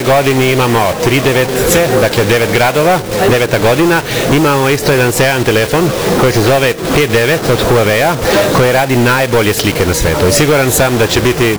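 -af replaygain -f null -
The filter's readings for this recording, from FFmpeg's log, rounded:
track_gain = -7.1 dB
track_peak = 0.591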